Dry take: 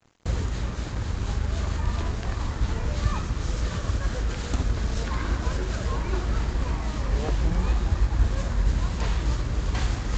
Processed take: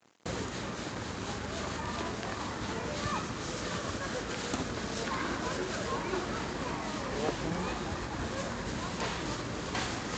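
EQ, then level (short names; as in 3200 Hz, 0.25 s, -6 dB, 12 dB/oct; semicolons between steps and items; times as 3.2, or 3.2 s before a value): HPF 210 Hz 12 dB/oct; 0.0 dB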